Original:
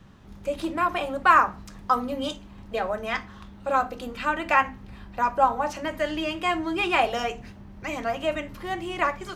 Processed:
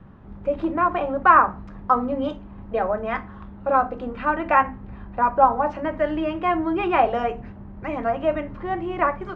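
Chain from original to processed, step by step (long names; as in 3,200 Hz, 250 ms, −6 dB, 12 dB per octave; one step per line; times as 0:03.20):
low-pass filter 1,400 Hz 12 dB per octave
level +5 dB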